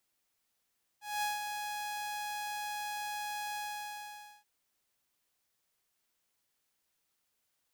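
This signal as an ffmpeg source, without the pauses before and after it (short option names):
-f lavfi -i "aevalsrc='0.0398*(2*mod(834*t,1)-1)':d=3.431:s=44100,afade=t=in:d=0.214,afade=t=out:st=0.214:d=0.163:silence=0.501,afade=t=out:st=2.56:d=0.871"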